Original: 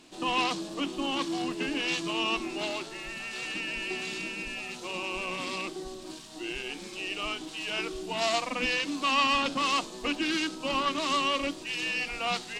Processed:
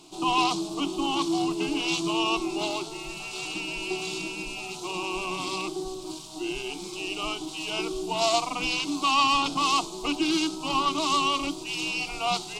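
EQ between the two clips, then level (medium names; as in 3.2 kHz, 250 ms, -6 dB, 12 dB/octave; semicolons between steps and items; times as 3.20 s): static phaser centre 350 Hz, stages 8; +6.5 dB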